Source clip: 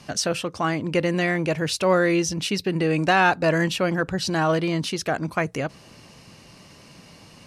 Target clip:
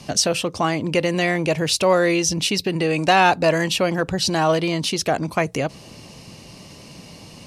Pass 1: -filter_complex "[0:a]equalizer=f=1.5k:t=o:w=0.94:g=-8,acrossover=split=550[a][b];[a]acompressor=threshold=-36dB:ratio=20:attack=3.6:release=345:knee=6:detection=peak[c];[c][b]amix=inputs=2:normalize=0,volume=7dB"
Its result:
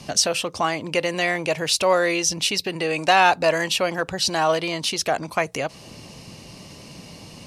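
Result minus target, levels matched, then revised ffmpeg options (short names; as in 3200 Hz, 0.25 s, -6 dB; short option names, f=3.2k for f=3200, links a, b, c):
compressor: peak gain reduction +9.5 dB
-filter_complex "[0:a]equalizer=f=1.5k:t=o:w=0.94:g=-8,acrossover=split=550[a][b];[a]acompressor=threshold=-26dB:ratio=20:attack=3.6:release=345:knee=6:detection=peak[c];[c][b]amix=inputs=2:normalize=0,volume=7dB"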